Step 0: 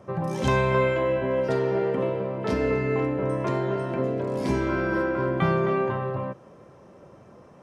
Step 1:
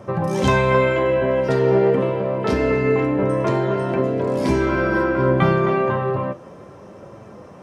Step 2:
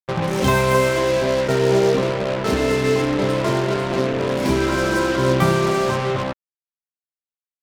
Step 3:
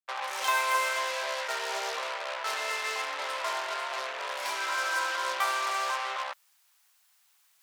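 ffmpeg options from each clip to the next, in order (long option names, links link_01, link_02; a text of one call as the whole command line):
ffmpeg -i in.wav -filter_complex "[0:a]asplit=2[link_01][link_02];[link_02]acompressor=threshold=-31dB:ratio=6,volume=-2.5dB[link_03];[link_01][link_03]amix=inputs=2:normalize=0,flanger=delay=8.8:depth=6.7:regen=63:speed=0.28:shape=triangular,volume=8.5dB" out.wav
ffmpeg -i in.wav -af "aeval=exprs='sgn(val(0))*max(abs(val(0))-0.00668,0)':channel_layout=same,acrusher=bits=3:mix=0:aa=0.5" out.wav
ffmpeg -i in.wav -af "areverse,acompressor=mode=upward:threshold=-33dB:ratio=2.5,areverse,highpass=frequency=790:width=0.5412,highpass=frequency=790:width=1.3066,volume=-5dB" out.wav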